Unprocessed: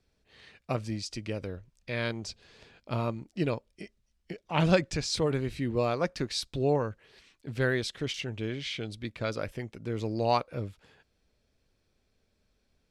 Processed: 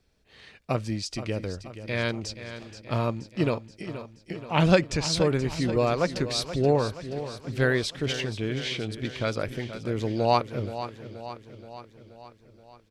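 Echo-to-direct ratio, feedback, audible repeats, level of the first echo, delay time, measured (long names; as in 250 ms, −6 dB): −10.0 dB, 59%, 6, −12.0 dB, 477 ms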